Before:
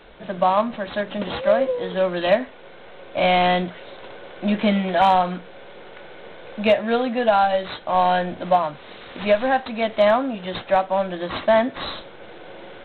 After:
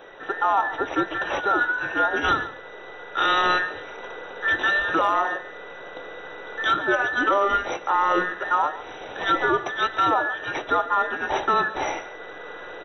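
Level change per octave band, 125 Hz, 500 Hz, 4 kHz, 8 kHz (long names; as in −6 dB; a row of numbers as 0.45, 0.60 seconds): −12.0 dB, −8.0 dB, −1.5 dB, can't be measured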